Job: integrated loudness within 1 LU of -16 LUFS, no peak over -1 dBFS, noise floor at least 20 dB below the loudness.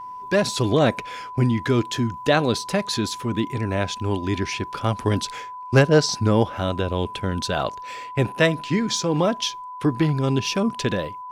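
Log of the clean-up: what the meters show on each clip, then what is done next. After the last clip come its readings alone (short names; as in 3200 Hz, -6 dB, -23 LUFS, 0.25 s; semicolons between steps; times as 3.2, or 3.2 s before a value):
steady tone 1000 Hz; tone level -33 dBFS; loudness -22.5 LUFS; peak -4.5 dBFS; loudness target -16.0 LUFS
-> notch 1000 Hz, Q 30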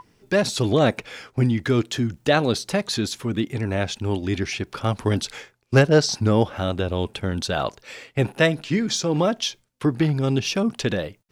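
steady tone none; loudness -23.0 LUFS; peak -4.5 dBFS; loudness target -16.0 LUFS
-> gain +7 dB; limiter -1 dBFS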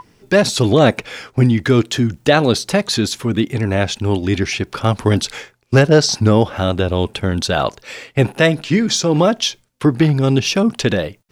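loudness -16.5 LUFS; peak -1.0 dBFS; noise floor -56 dBFS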